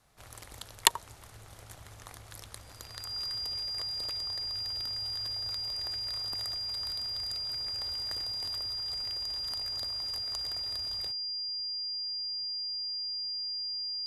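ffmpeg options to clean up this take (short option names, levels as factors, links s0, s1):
-af "bandreject=f=4800:w=30"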